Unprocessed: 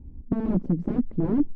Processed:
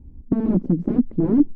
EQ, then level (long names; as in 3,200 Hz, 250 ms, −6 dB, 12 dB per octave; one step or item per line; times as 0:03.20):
dynamic equaliser 290 Hz, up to +7 dB, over −34 dBFS, Q 0.85
0.0 dB